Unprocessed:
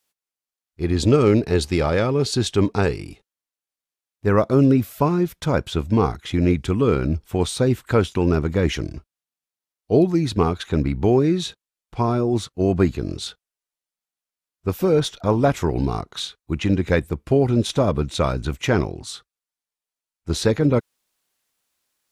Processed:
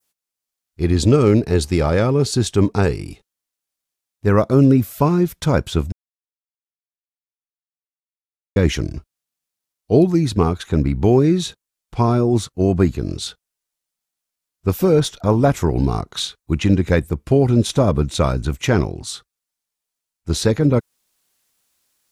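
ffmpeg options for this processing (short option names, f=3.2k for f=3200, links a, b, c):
-filter_complex "[0:a]asplit=3[a][b][c];[a]atrim=end=5.92,asetpts=PTS-STARTPTS,afade=t=out:st=5.916:d=0.004:c=hsin[d];[b]atrim=start=5.92:end=8.56,asetpts=PTS-STARTPTS,volume=0[e];[c]atrim=start=8.56,asetpts=PTS-STARTPTS,afade=t=in:d=0.004:c=hsin[f];[d][e][f]concat=n=3:v=0:a=1,bass=f=250:g=3,treble=f=4k:g=4,dynaudnorm=f=260:g=3:m=4dB,adynamicequalizer=threshold=0.0126:dfrequency=3500:dqfactor=0.82:tfrequency=3500:tqfactor=0.82:attack=5:release=100:ratio=0.375:range=2.5:mode=cutabove:tftype=bell"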